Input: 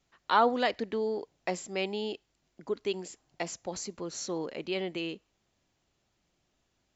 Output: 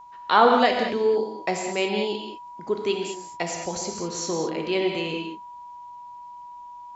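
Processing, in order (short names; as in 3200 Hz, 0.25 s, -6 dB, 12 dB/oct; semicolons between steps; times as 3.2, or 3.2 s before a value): whine 970 Hz -48 dBFS; non-linear reverb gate 0.24 s flat, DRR 2 dB; gain +6 dB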